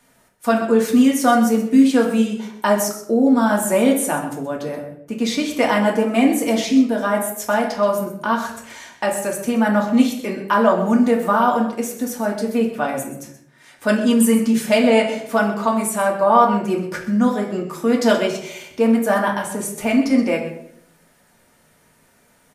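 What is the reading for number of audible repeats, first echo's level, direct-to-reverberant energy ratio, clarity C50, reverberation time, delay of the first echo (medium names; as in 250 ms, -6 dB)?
1, -13.0 dB, -1.0 dB, 6.5 dB, 0.70 s, 127 ms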